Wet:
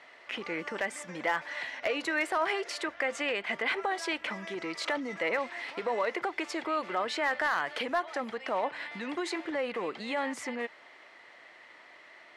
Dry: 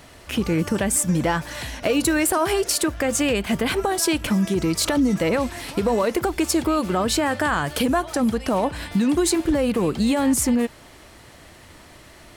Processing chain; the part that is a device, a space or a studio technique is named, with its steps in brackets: megaphone (band-pass 560–3300 Hz; peaking EQ 2 kHz +9 dB 0.26 oct; hard clipper -14 dBFS, distortion -25 dB); trim -6 dB

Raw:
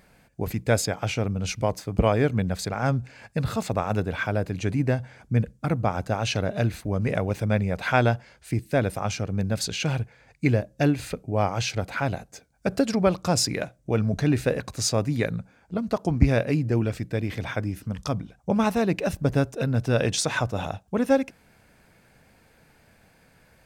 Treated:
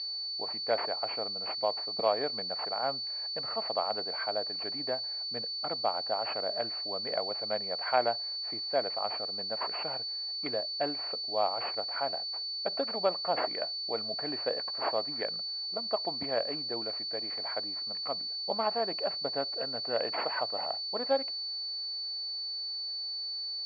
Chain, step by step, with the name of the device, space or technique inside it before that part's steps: toy sound module (decimation joined by straight lines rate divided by 8×; class-D stage that switches slowly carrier 4.5 kHz; cabinet simulation 660–4100 Hz, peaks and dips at 670 Hz +4 dB, 1.5 kHz -5 dB, 3.3 kHz -3 dB); trim -2.5 dB

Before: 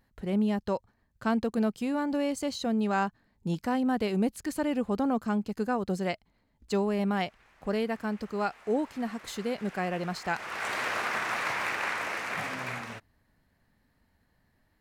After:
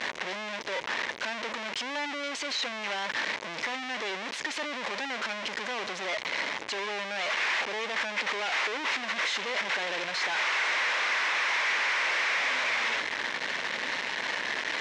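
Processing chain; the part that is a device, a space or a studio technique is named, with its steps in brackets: home computer beeper (one-bit comparator; cabinet simulation 670–5200 Hz, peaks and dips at 740 Hz -6 dB, 1.3 kHz -5 dB, 2.1 kHz +4 dB, 4.6 kHz -5 dB); trim +5 dB

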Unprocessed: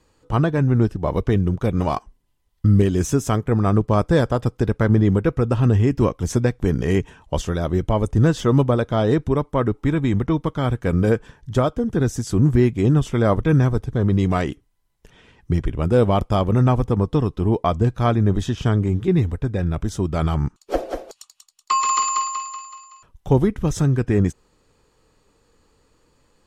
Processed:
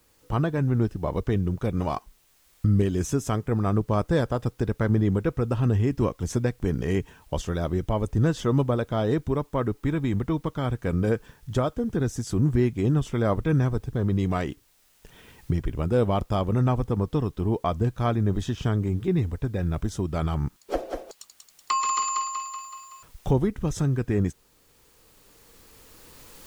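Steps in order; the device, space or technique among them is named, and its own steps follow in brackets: cheap recorder with automatic gain (white noise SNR 40 dB; recorder AGC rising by 7.5 dB/s); trim -6 dB

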